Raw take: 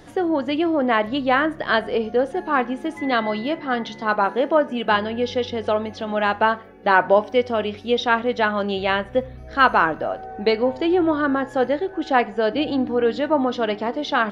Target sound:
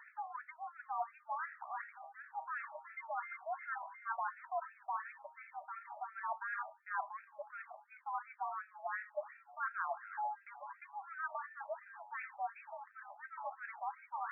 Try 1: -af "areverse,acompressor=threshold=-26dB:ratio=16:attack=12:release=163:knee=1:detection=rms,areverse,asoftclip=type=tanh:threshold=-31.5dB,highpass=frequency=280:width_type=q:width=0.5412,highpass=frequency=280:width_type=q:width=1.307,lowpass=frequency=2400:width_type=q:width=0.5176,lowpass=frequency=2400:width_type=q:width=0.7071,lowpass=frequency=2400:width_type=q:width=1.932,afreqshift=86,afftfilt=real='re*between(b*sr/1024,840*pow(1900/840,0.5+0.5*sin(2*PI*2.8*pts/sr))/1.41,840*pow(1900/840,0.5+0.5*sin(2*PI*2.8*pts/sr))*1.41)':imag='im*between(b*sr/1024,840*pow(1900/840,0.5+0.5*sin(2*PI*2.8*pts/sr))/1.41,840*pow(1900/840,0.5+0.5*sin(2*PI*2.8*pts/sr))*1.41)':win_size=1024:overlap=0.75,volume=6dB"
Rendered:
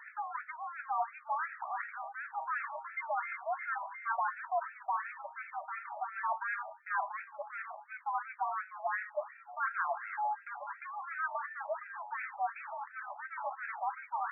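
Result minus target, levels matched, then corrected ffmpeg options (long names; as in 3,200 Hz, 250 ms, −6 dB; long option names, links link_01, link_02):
downward compressor: peak gain reduction −10 dB
-af "areverse,acompressor=threshold=-36.5dB:ratio=16:attack=12:release=163:knee=1:detection=rms,areverse,asoftclip=type=tanh:threshold=-31.5dB,highpass=frequency=280:width_type=q:width=0.5412,highpass=frequency=280:width_type=q:width=1.307,lowpass=frequency=2400:width_type=q:width=0.5176,lowpass=frequency=2400:width_type=q:width=0.7071,lowpass=frequency=2400:width_type=q:width=1.932,afreqshift=86,afftfilt=real='re*between(b*sr/1024,840*pow(1900/840,0.5+0.5*sin(2*PI*2.8*pts/sr))/1.41,840*pow(1900/840,0.5+0.5*sin(2*PI*2.8*pts/sr))*1.41)':imag='im*between(b*sr/1024,840*pow(1900/840,0.5+0.5*sin(2*PI*2.8*pts/sr))/1.41,840*pow(1900/840,0.5+0.5*sin(2*PI*2.8*pts/sr))*1.41)':win_size=1024:overlap=0.75,volume=6dB"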